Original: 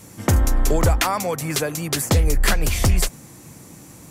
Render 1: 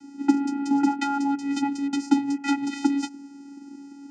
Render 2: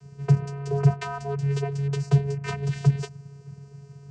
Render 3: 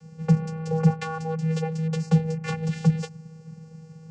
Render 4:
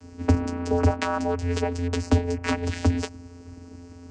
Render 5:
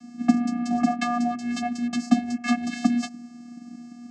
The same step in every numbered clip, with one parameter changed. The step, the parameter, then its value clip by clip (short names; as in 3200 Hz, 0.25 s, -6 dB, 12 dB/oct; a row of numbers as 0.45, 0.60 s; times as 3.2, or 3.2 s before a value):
vocoder, frequency: 280, 140, 160, 87, 240 Hz